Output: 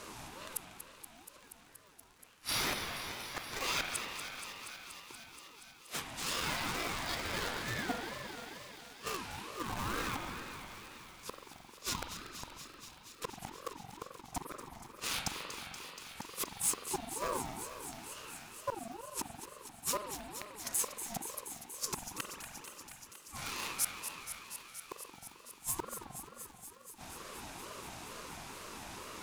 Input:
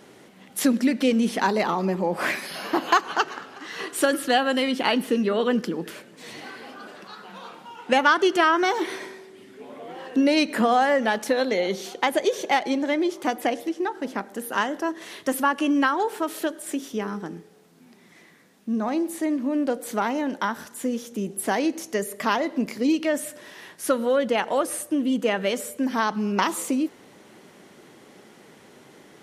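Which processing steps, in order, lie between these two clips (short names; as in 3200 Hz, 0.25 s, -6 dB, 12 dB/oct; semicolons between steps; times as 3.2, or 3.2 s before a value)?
one diode to ground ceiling -16.5 dBFS; flipped gate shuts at -22 dBFS, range -41 dB; in parallel at -8.5 dB: bit-crush 6-bit; on the sum: overloaded stage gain 25 dB; limiter -29.5 dBFS, peak gain reduction 4.5 dB; high shelf 3500 Hz +8 dB; spring tank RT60 3.6 s, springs 44 ms, chirp 40 ms, DRR 2.5 dB; crackle 140/s -51 dBFS; bell 6100 Hz +2.5 dB; on a send: thinning echo 0.238 s, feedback 83%, high-pass 840 Hz, level -10 dB; on the sum: ring modulator with a swept carrier 640 Hz, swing 30%, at 2.2 Hz; gain +2.5 dB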